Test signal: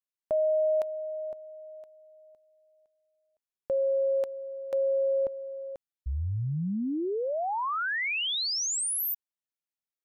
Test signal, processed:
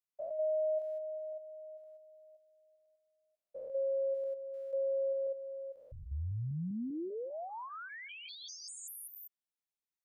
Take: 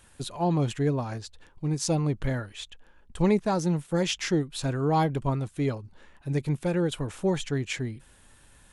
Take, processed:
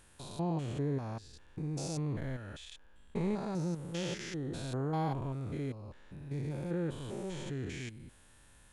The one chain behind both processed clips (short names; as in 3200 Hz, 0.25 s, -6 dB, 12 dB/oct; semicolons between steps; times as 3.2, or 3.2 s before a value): stepped spectrum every 0.2 s; in parallel at -3 dB: compressor, threshold -40 dBFS; on the sum: gain -8 dB